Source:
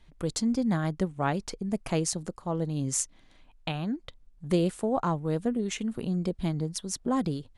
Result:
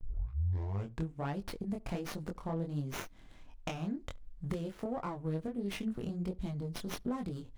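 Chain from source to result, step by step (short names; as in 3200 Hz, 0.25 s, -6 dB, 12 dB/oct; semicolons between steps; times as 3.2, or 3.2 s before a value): tape start at the beginning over 1.18 s; low shelf 99 Hz +10.5 dB; compressor 10:1, threshold -33 dBFS, peak gain reduction 19 dB; chorus 1.4 Hz, delay 20 ms, depth 5.2 ms; gate with hold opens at -51 dBFS; on a send: darkening echo 71 ms, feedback 18%, low-pass 1300 Hz, level -22.5 dB; on the sum: running maximum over 5 samples; gain +3 dB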